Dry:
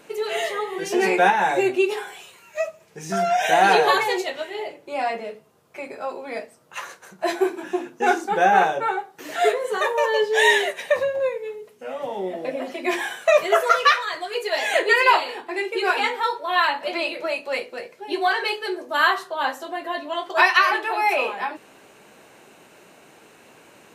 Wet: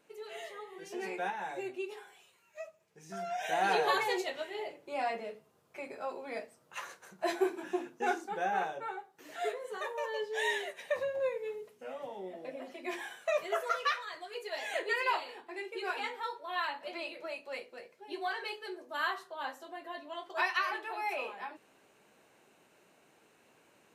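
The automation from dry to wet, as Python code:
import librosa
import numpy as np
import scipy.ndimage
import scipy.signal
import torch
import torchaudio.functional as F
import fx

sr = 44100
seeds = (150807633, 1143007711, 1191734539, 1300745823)

y = fx.gain(x, sr, db=fx.line((3.08, -19.0), (4.12, -9.0), (7.81, -9.0), (8.39, -16.0), (10.65, -16.0), (11.57, -6.0), (12.18, -15.0)))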